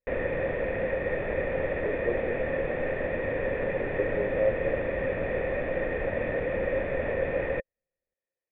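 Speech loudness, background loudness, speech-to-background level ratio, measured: −33.0 LKFS, −29.5 LKFS, −3.5 dB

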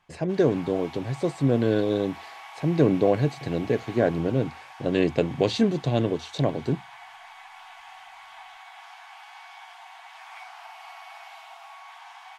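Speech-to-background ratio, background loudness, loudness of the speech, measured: 19.0 dB, −44.0 LKFS, −25.0 LKFS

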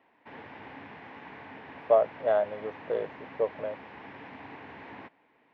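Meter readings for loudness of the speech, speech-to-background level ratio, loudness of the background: −29.0 LKFS, 17.0 dB, −46.0 LKFS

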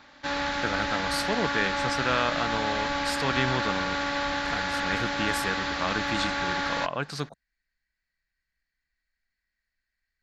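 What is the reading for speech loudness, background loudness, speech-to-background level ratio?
−31.0 LKFS, −28.5 LKFS, −2.5 dB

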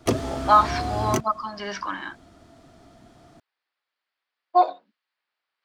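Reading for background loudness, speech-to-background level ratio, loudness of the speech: −28.5 LKFS, 5.0 dB, −23.5 LKFS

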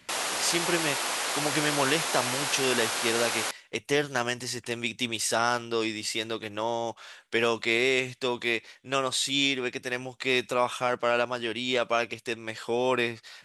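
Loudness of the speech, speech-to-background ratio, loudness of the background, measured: −28.5 LKFS, 0.0 dB, −28.5 LKFS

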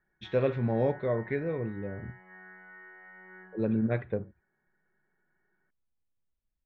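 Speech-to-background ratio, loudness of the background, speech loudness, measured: 19.5 dB, −50.5 LKFS, −31.0 LKFS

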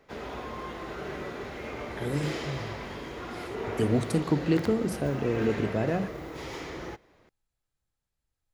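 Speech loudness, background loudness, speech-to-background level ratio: −29.5 LKFS, −37.0 LKFS, 7.5 dB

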